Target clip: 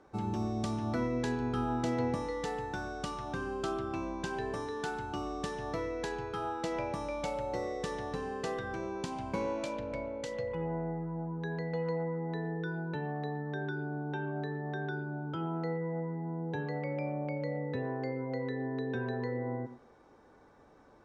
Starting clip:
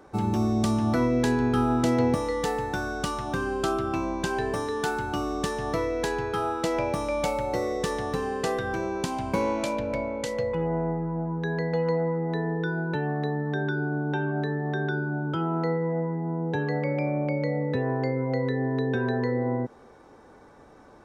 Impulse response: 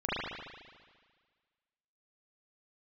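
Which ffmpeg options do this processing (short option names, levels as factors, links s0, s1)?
-filter_complex "[0:a]lowpass=7800,asplit=2[s0][s1];[1:a]atrim=start_sample=2205,atrim=end_sample=4410,adelay=42[s2];[s1][s2]afir=irnorm=-1:irlink=0,volume=0.106[s3];[s0][s3]amix=inputs=2:normalize=0,volume=0.376"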